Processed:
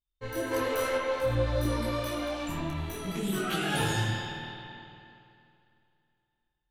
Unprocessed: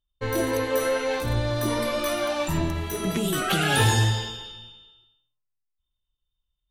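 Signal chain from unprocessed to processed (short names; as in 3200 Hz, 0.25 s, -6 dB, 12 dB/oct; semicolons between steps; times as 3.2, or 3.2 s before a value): 0.51–0.97 sample leveller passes 2; spring tank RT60 2.7 s, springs 51 ms, chirp 55 ms, DRR 0.5 dB; detuned doubles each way 21 cents; gain -5.5 dB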